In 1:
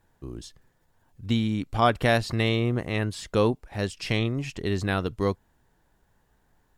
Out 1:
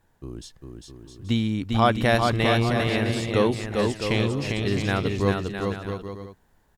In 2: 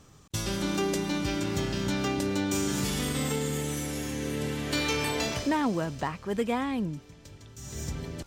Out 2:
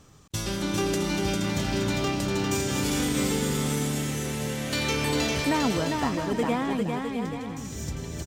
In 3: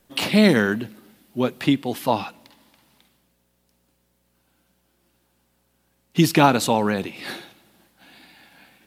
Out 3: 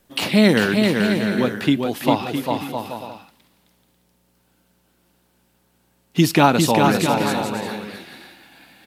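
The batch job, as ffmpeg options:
ffmpeg -i in.wav -af "aecho=1:1:400|660|829|938.8|1010:0.631|0.398|0.251|0.158|0.1,volume=1dB" out.wav

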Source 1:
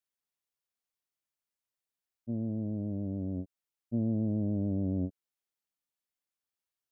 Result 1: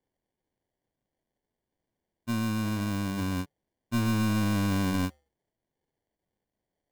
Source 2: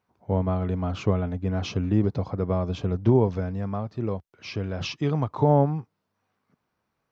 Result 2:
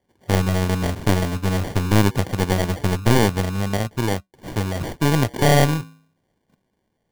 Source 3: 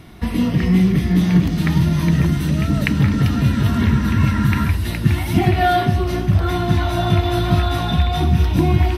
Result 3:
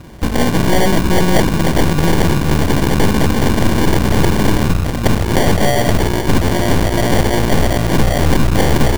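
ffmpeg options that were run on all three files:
ffmpeg -i in.wav -af "flanger=delay=2.3:depth=7.1:regen=-89:speed=0.25:shape=sinusoidal,acrusher=samples=34:mix=1:aa=0.000001,aeval=exprs='0.531*(cos(1*acos(clip(val(0)/0.531,-1,1)))-cos(1*PI/2))+0.133*(cos(3*acos(clip(val(0)/0.531,-1,1)))-cos(3*PI/2))+0.188*(cos(7*acos(clip(val(0)/0.531,-1,1)))-cos(7*PI/2))+0.168*(cos(8*acos(clip(val(0)/0.531,-1,1)))-cos(8*PI/2))':channel_layout=same,volume=3dB" out.wav

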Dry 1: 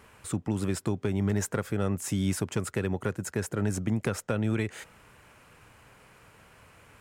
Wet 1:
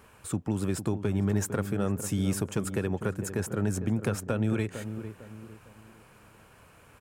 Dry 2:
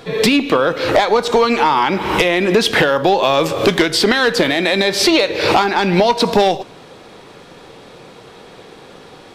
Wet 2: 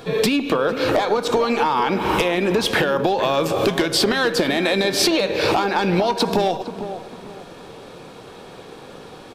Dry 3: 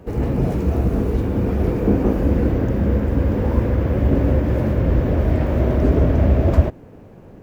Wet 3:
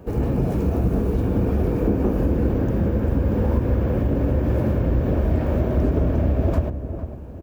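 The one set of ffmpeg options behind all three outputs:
ffmpeg -i in.wav -filter_complex "[0:a]highshelf=frequency=3000:gain=-8.5,bandreject=frequency=2000:width=13,acompressor=threshold=-16dB:ratio=6,crystalizer=i=1.5:c=0,asplit=2[link_01][link_02];[link_02]adelay=453,lowpass=frequency=990:poles=1,volume=-9.5dB,asplit=2[link_03][link_04];[link_04]adelay=453,lowpass=frequency=990:poles=1,volume=0.38,asplit=2[link_05][link_06];[link_06]adelay=453,lowpass=frequency=990:poles=1,volume=0.38,asplit=2[link_07][link_08];[link_08]adelay=453,lowpass=frequency=990:poles=1,volume=0.38[link_09];[link_03][link_05][link_07][link_09]amix=inputs=4:normalize=0[link_10];[link_01][link_10]amix=inputs=2:normalize=0" out.wav

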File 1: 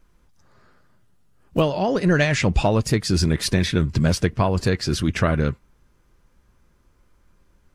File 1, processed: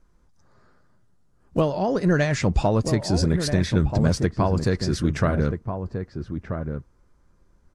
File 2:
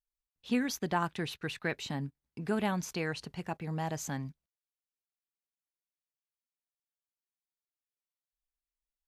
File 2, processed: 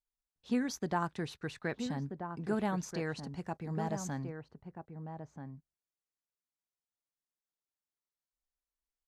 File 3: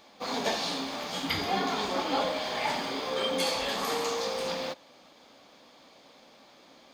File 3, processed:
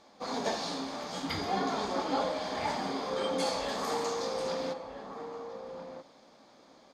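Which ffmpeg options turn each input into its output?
ffmpeg -i in.wav -filter_complex "[0:a]lowpass=8600,equalizer=frequency=2800:width=1.3:gain=-8.5,asplit=2[link_01][link_02];[link_02]adelay=1283,volume=-7dB,highshelf=frequency=4000:gain=-28.9[link_03];[link_01][link_03]amix=inputs=2:normalize=0,volume=-1.5dB" out.wav

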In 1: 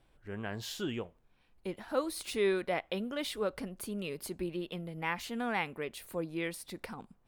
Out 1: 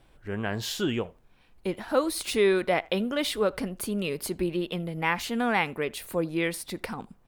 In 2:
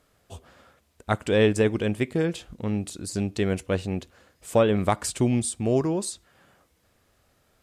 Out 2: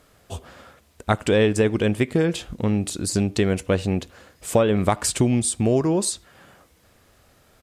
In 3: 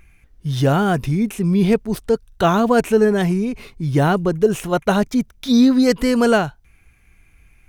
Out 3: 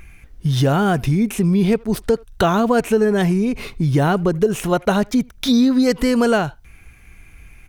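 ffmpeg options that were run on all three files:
ffmpeg -i in.wav -filter_complex "[0:a]acompressor=threshold=-26dB:ratio=2.5,asplit=2[link_01][link_02];[link_02]adelay=80,highpass=300,lowpass=3400,asoftclip=type=hard:threshold=-23.5dB,volume=-25dB[link_03];[link_01][link_03]amix=inputs=2:normalize=0,volume=8.5dB" out.wav

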